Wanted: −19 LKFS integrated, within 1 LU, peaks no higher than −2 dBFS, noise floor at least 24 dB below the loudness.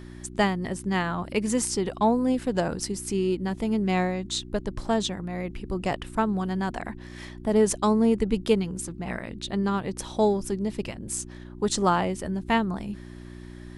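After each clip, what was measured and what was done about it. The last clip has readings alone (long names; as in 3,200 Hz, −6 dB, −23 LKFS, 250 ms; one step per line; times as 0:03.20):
mains hum 60 Hz; hum harmonics up to 360 Hz; level of the hum −41 dBFS; integrated loudness −27.0 LKFS; sample peak −8.5 dBFS; target loudness −19.0 LKFS
→ hum removal 60 Hz, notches 6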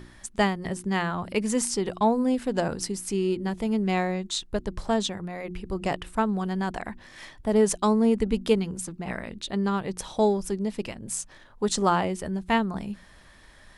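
mains hum none found; integrated loudness −27.0 LKFS; sample peak −9.0 dBFS; target loudness −19.0 LKFS
→ level +8 dB
brickwall limiter −2 dBFS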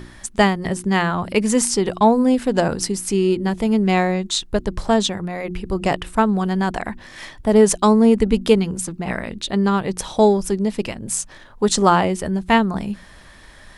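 integrated loudness −19.0 LKFS; sample peak −2.0 dBFS; background noise floor −44 dBFS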